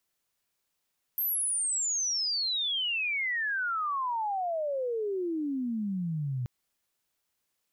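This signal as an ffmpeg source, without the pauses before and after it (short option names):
-f lavfi -i "aevalsrc='pow(10,(-26.5-2.5*t/5.28)/20)*sin(2*PI*13000*5.28/log(120/13000)*(exp(log(120/13000)*t/5.28)-1))':d=5.28:s=44100"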